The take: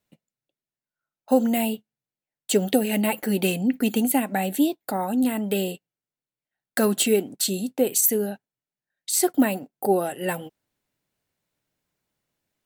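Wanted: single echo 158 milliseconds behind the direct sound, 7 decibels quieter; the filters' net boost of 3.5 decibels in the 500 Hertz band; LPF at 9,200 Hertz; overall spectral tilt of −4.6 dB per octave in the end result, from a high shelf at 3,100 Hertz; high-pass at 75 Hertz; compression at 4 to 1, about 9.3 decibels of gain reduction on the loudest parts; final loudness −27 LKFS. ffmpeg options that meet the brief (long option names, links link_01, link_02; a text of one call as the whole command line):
ffmpeg -i in.wav -af "highpass=75,lowpass=9200,equalizer=frequency=500:width_type=o:gain=4.5,highshelf=frequency=3100:gain=-6,acompressor=threshold=-23dB:ratio=4,aecho=1:1:158:0.447,volume=0.5dB" out.wav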